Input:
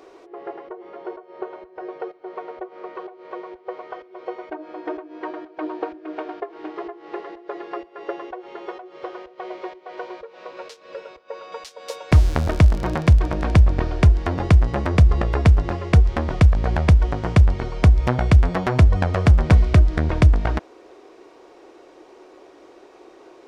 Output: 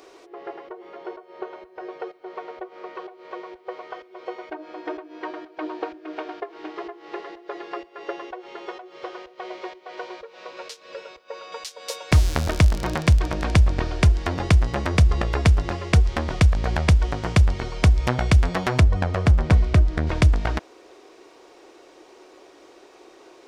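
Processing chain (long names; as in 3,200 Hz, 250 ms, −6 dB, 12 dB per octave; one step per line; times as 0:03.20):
high-shelf EQ 2,200 Hz +10.5 dB, from 0:18.80 +2 dB, from 0:20.07 +9 dB
level −3 dB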